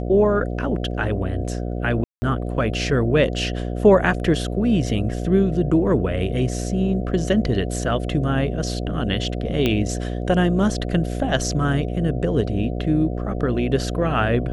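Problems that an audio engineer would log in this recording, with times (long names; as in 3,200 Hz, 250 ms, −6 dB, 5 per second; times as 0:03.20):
mains buzz 60 Hz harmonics 12 −26 dBFS
0:02.04–0:02.22: drop-out 180 ms
0:09.66: click −8 dBFS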